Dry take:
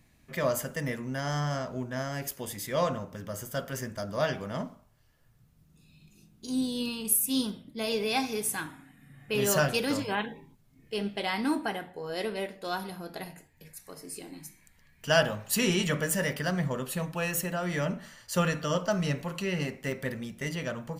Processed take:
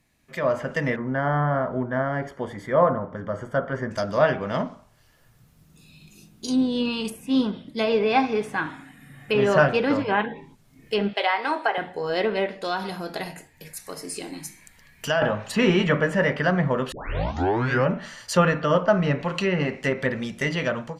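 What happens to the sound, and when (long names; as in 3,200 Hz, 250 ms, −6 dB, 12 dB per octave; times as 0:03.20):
0:00.96–0:03.91: Savitzky-Golay smoothing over 41 samples
0:11.13–0:11.78: high-pass filter 450 Hz 24 dB per octave
0:12.59–0:15.22: downward compressor 2 to 1, threshold −35 dBFS
0:16.92: tape start 1.00 s
whole clip: low-shelf EQ 240 Hz −6.5 dB; treble cut that deepens with the level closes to 1,900 Hz, closed at −29 dBFS; automatic gain control gain up to 13 dB; level −2 dB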